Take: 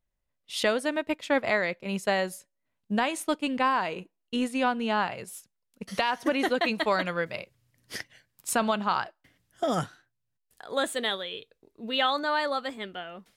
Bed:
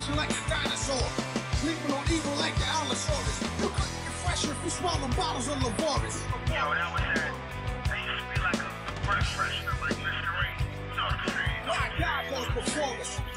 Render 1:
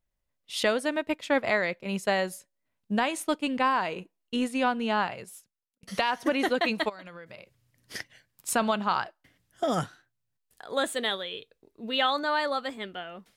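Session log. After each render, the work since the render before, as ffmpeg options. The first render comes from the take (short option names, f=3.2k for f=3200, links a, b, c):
-filter_complex "[0:a]asplit=3[a][b][c];[a]afade=t=out:st=6.88:d=0.02[d];[b]acompressor=threshold=-41dB:ratio=8:attack=3.2:release=140:knee=1:detection=peak,afade=t=in:st=6.88:d=0.02,afade=t=out:st=7.94:d=0.02[e];[c]afade=t=in:st=7.94:d=0.02[f];[d][e][f]amix=inputs=3:normalize=0,asplit=2[g][h];[g]atrim=end=5.83,asetpts=PTS-STARTPTS,afade=t=out:st=5.01:d=0.82[i];[h]atrim=start=5.83,asetpts=PTS-STARTPTS,afade=t=in:d=0.004:c=hsin[j];[i][j]concat=n=2:v=0:a=1"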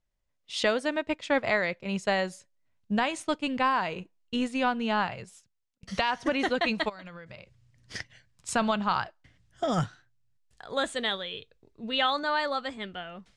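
-af "lowpass=f=8k:w=0.5412,lowpass=f=8k:w=1.3066,asubboost=boost=3.5:cutoff=150"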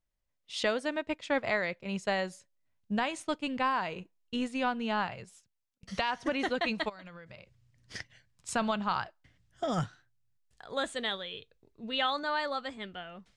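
-af "volume=-4dB"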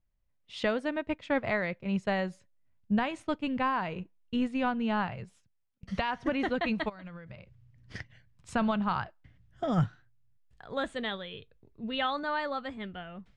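-af "bass=f=250:g=8,treble=f=4k:g=-12"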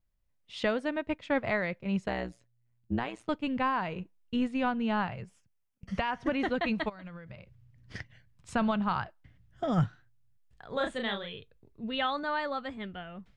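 -filter_complex "[0:a]asettb=1/sr,asplit=3[a][b][c];[a]atrim=end=2.084[d];[b]atrim=start=2.08:end=3.29,asetpts=PTS-STARTPTS,afade=t=in:d=0.004:c=qsin,afade=t=out:st=1.206:d=0.004:c=qsin,tremolo=f=120:d=0.974[e];[c]atrim=start=3.286[f];[d][e]acrossfade=d=0.004:c1=hsin:c2=qsin[g];[g][f]acrossfade=d=0.004:c1=qsin:c2=hsin,asettb=1/sr,asplit=3[h][i][j];[h]atrim=end=5.214[k];[i]atrim=start=5.21:end=6.2,asetpts=PTS-STARTPTS,afade=t=in:d=0.004:c=qsin,afade=t=out:st=0.986:d=0.004:c=qsin,equalizer=f=3.9k:w=4.9:g=-10[l];[j]atrim=start=6.196[m];[k][l]acrossfade=d=0.004:c1=hsin:c2=qsin[n];[n][m]acrossfade=d=0.004:c1=qsin:c2=hsin,asettb=1/sr,asplit=3[o][p][q];[o]atrim=end=10.704[r];[p]atrim=start=10.7:end=11.33,asetpts=PTS-STARTPTS,afade=t=in:d=0.004:c=qsin,afade=t=out:st=0.626:d=0.004:c=qsin,asplit=2[s][t];[t]adelay=35,volume=-4dB[u];[s][u]amix=inputs=2:normalize=0,atrim=end_sample=27783[v];[q]atrim=start=11.326[w];[r][v]acrossfade=d=0.004:c1=hsin:c2=qsin[x];[x][w]acrossfade=d=0.004:c1=qsin:c2=hsin"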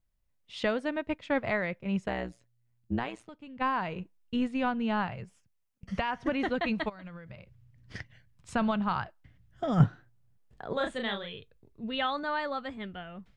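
-filter_complex "[0:a]asettb=1/sr,asplit=3[a][b][c];[a]atrim=end=1.524[d];[b]atrim=start=1.52:end=2.27,asetpts=PTS-STARTPTS,afade=t=in:d=0.004:c=qsin,afade=t=out:st=0.746:d=0.004:c=qsin,equalizer=f=4.3k:t=o:w=0.21:g=-6.5[e];[c]atrim=start=2.266[f];[d][e]acrossfade=d=0.004:c1=hsin:c2=qsin[g];[g][f]acrossfade=d=0.004:c1=qsin:c2=hsin,asplit=3[h][i][j];[h]afade=t=out:st=3.2:d=0.02[k];[i]acompressor=threshold=-51dB:ratio=2.5:attack=3.2:release=140:knee=1:detection=peak,afade=t=in:st=3.2:d=0.02,afade=t=out:st=3.6:d=0.02[l];[j]afade=t=in:st=3.6:d=0.02[m];[k][l][m]amix=inputs=3:normalize=0,asettb=1/sr,asplit=3[n][o][p];[n]atrim=end=9.804[q];[o]atrim=start=9.8:end=10.73,asetpts=PTS-STARTPTS,afade=t=in:d=0.004:c=qsin,afade=t=out:st=0.926:d=0.004:c=qsin,equalizer=f=370:w=0.36:g=12.5[r];[p]atrim=start=10.726[s];[q][r]acrossfade=d=0.004:c1=hsin:c2=qsin[t];[t][s]acrossfade=d=0.004:c1=qsin:c2=hsin"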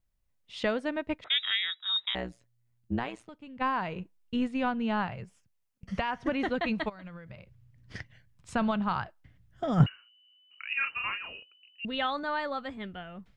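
-filter_complex "[0:a]asettb=1/sr,asplit=3[a][b][c];[a]atrim=end=1.244[d];[b]atrim=start=1.24:end=2.15,asetpts=PTS-STARTPTS,afade=t=in:d=0.004:c=qsin,afade=t=out:st=0.906:d=0.004:c=qsin,lowpass=f=3.3k:t=q:w=0.5098,lowpass=f=3.3k:t=q:w=0.6013,lowpass=f=3.3k:t=q:w=0.9,lowpass=f=3.3k:t=q:w=2.563,afreqshift=-3900[e];[c]atrim=start=2.146[f];[d][e]acrossfade=d=0.004:c1=hsin:c2=qsin[g];[g][f]acrossfade=d=0.004:c1=qsin:c2=hsin,asettb=1/sr,asplit=3[h][i][j];[h]atrim=end=9.864[k];[i]atrim=start=9.86:end=11.85,asetpts=PTS-STARTPTS,afade=t=in:d=0.004:c=qsin,afade=t=out:st=1.986:d=0.004:c=qsin,lowpass=f=2.6k:t=q:w=0.5098,lowpass=f=2.6k:t=q:w=0.6013,lowpass=f=2.6k:t=q:w=0.9,lowpass=f=2.6k:t=q:w=2.563,afreqshift=-3000[l];[j]atrim=start=11.846[m];[k][l]acrossfade=d=0.004:c1=hsin:c2=qsin[n];[n][m]acrossfade=d=0.004:c1=qsin:c2=hsin"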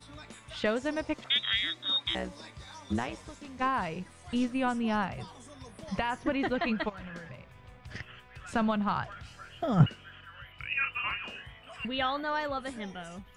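-filter_complex "[1:a]volume=-19dB[a];[0:a][a]amix=inputs=2:normalize=0"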